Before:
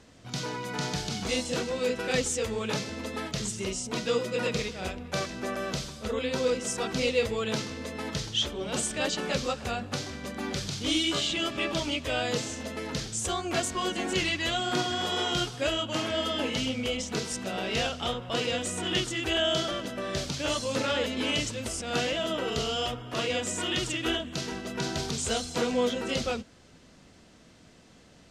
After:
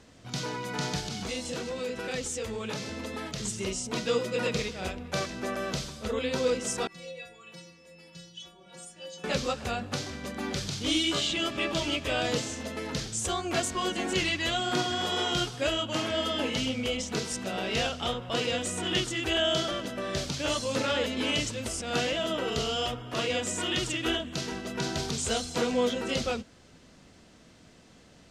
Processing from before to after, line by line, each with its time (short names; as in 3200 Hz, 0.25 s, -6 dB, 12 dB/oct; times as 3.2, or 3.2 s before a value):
0.99–3.45 compressor 2.5:1, threshold -32 dBFS
6.87–9.24 metallic resonator 170 Hz, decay 0.64 s, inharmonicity 0.008
11.28–11.92 echo throw 0.47 s, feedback 10%, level -8 dB